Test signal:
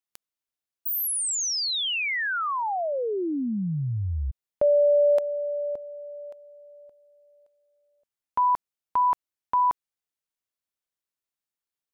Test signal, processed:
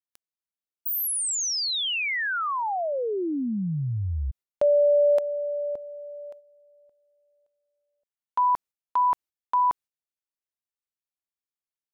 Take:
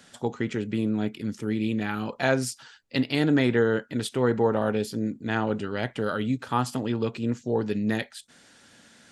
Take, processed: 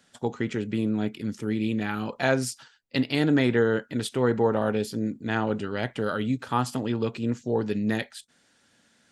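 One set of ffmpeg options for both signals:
ffmpeg -i in.wav -af "agate=range=-9dB:threshold=-46dB:ratio=16:release=233:detection=peak" out.wav

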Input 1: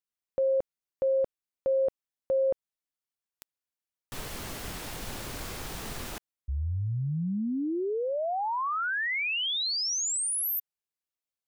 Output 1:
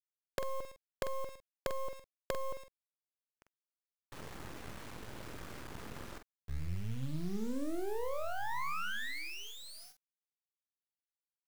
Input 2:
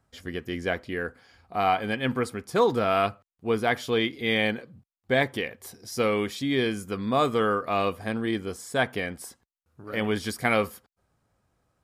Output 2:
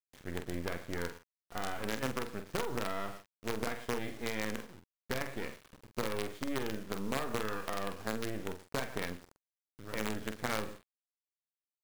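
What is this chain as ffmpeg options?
ffmpeg -i in.wav -filter_complex "[0:a]highpass=51,adynamicequalizer=threshold=0.00794:dfrequency=110:dqfactor=1.1:tfrequency=110:tqfactor=1.1:attack=5:release=100:ratio=0.3:range=1.5:mode=cutabove:tftype=bell,lowpass=1700,asplit=2[link_01][link_02];[link_02]aecho=0:1:111:0.119[link_03];[link_01][link_03]amix=inputs=2:normalize=0,acompressor=threshold=-28dB:ratio=12:attack=8.1:release=88:knee=1:detection=peak,acrusher=bits=5:dc=4:mix=0:aa=0.000001,equalizer=frequency=730:width=3:gain=-3.5,asplit=2[link_04][link_05];[link_05]adelay=46,volume=-8dB[link_06];[link_04][link_06]amix=inputs=2:normalize=0,volume=-3dB" out.wav

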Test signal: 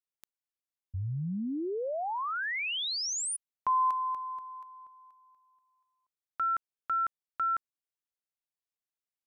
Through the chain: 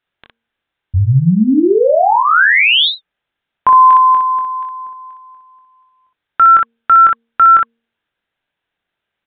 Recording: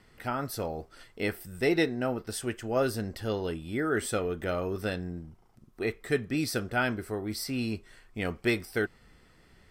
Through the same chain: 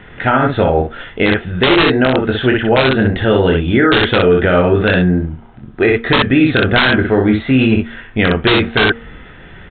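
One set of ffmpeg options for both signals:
ffmpeg -i in.wav -af "equalizer=frequency=1600:width=6.6:gain=6.5,bandreject=frequency=1100:width=16,bandreject=frequency=230.9:width_type=h:width=4,bandreject=frequency=461.8:width_type=h:width=4,aresample=8000,aeval=exprs='(mod(8.41*val(0)+1,2)-1)/8.41':channel_layout=same,aresample=44100,aecho=1:1:23|61:0.531|0.596,alimiter=level_in=22dB:limit=-1dB:release=50:level=0:latency=1,volume=-1.5dB" out.wav

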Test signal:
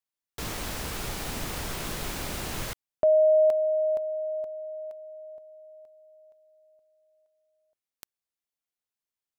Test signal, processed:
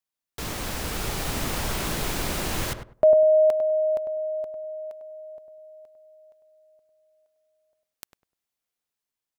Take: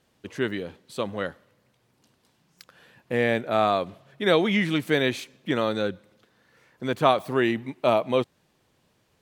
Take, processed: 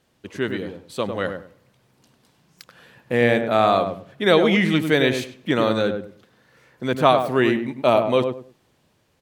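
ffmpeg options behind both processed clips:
ffmpeg -i in.wav -filter_complex "[0:a]asplit=2[link_01][link_02];[link_02]adelay=100,lowpass=frequency=1100:poles=1,volume=-5.5dB,asplit=2[link_03][link_04];[link_04]adelay=100,lowpass=frequency=1100:poles=1,volume=0.25,asplit=2[link_05][link_06];[link_06]adelay=100,lowpass=frequency=1100:poles=1,volume=0.25[link_07];[link_03][link_05][link_07]amix=inputs=3:normalize=0[link_08];[link_01][link_08]amix=inputs=2:normalize=0,dynaudnorm=framelen=280:gausssize=7:maxgain=3.5dB,volume=1.5dB" out.wav

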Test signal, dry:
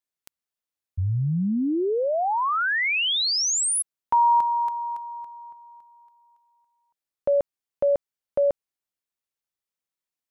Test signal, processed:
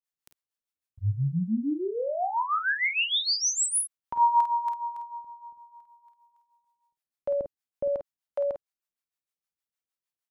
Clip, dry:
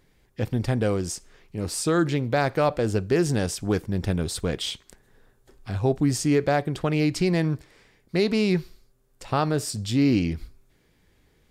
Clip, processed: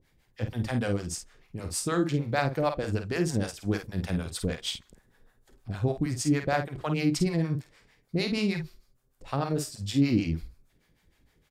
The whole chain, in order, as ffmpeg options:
ffmpeg -i in.wav -filter_complex "[0:a]equalizer=frequency=390:width_type=o:width=0.49:gain=-3,acrossover=split=560[link_01][link_02];[link_01]aeval=exprs='val(0)*(1-1/2+1/2*cos(2*PI*6.5*n/s))':channel_layout=same[link_03];[link_02]aeval=exprs='val(0)*(1-1/2-1/2*cos(2*PI*6.5*n/s))':channel_layout=same[link_04];[link_03][link_04]amix=inputs=2:normalize=0,asplit=2[link_05][link_06];[link_06]aecho=0:1:37|50:0.168|0.422[link_07];[link_05][link_07]amix=inputs=2:normalize=0" out.wav

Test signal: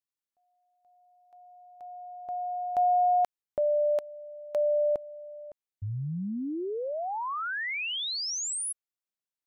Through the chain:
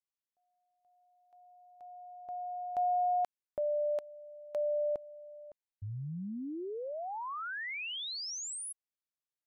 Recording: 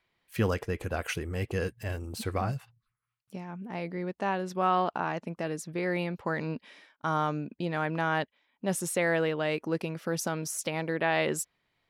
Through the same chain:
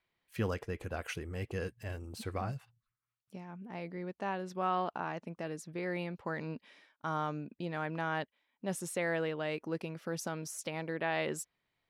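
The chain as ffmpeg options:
ffmpeg -i in.wav -af "highshelf=frequency=11000:gain=-5,volume=-6.5dB" out.wav

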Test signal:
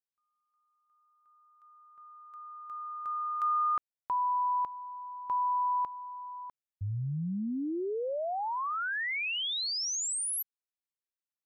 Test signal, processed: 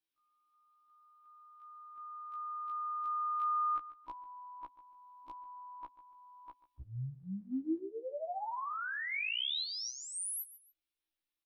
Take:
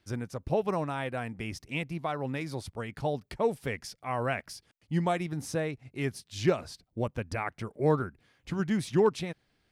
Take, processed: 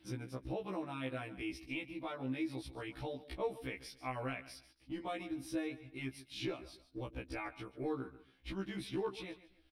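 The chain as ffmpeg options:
ffmpeg -i in.wav -af "superequalizer=6b=3.55:12b=1.78:13b=2:15b=0.355,aecho=1:1:141|282:0.133|0.0307,acompressor=threshold=-43dB:ratio=2:attack=0.26:release=953:knee=1:detection=peak,asubboost=boost=7:cutoff=51,afftfilt=real='re*1.73*eq(mod(b,3),0)':imag='im*1.73*eq(mod(b,3),0)':win_size=2048:overlap=0.75,volume=3.5dB" out.wav

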